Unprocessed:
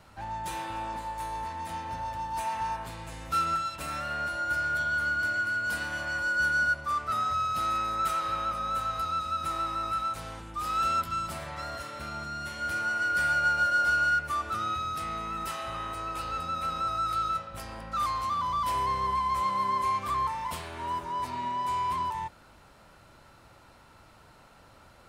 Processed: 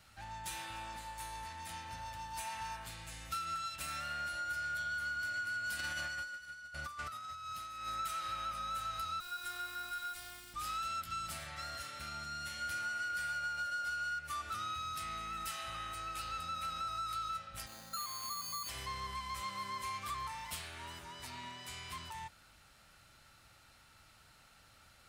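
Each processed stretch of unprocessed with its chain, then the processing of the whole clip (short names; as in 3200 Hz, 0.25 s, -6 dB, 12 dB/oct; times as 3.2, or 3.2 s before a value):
5.79–7.88 negative-ratio compressor -34 dBFS, ratio -0.5 + thin delay 80 ms, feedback 84%, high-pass 1400 Hz, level -21.5 dB
9.2–10.54 requantised 8-bit, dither none + robotiser 356 Hz + notch 6300 Hz, Q 10
17.66–18.69 HPF 140 Hz + high shelf 2300 Hz -9 dB + careless resampling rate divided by 8×, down none, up hold
whole clip: passive tone stack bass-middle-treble 5-5-5; notch 1000 Hz, Q 6.9; compressor, threshold -42 dBFS; gain +6 dB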